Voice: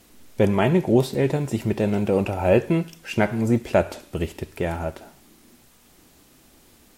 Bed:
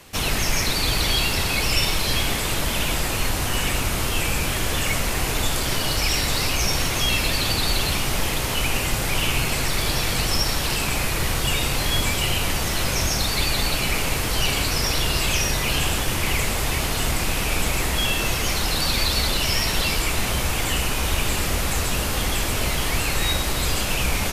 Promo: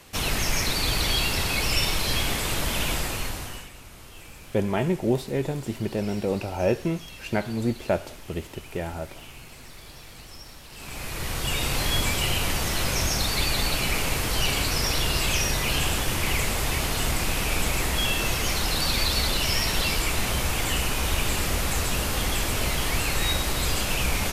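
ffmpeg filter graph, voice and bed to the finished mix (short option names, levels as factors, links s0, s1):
-filter_complex "[0:a]adelay=4150,volume=0.531[s0];[1:a]volume=6.68,afade=t=out:st=2.91:d=0.78:silence=0.112202,afade=t=in:st=10.71:d=1.06:silence=0.105925[s1];[s0][s1]amix=inputs=2:normalize=0"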